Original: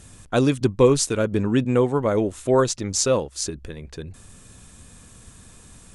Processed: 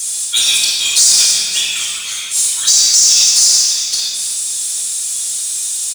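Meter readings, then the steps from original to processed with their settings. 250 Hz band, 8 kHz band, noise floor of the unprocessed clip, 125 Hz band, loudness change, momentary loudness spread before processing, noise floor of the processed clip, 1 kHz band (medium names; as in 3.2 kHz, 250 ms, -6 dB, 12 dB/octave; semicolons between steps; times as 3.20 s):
under -20 dB, +21.0 dB, -48 dBFS, under -20 dB, +10.5 dB, 19 LU, -22 dBFS, no reading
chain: coarse spectral quantiser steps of 15 dB; inverse Chebyshev high-pass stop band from 680 Hz, stop band 80 dB; in parallel at -4 dB: saturation -21.5 dBFS, distortion -11 dB; on the sum: flange 0.58 Hz, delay 1.4 ms, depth 3.9 ms, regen +19%; on a send: feedback delay 270 ms, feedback 50%, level -18 dB; on the sum: simulated room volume 2100 m³, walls mixed, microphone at 4.6 m; power-law waveshaper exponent 0.7; loudness maximiser +17 dB; trim -1 dB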